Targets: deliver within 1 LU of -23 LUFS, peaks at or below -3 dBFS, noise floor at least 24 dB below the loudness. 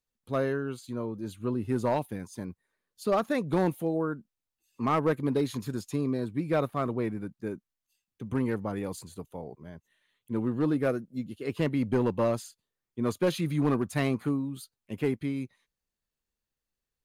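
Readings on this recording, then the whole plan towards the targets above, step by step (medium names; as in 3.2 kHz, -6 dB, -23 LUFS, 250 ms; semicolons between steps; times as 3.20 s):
clipped samples 0.5%; clipping level -19.0 dBFS; loudness -30.5 LUFS; peak level -19.0 dBFS; loudness target -23.0 LUFS
-> clip repair -19 dBFS; trim +7.5 dB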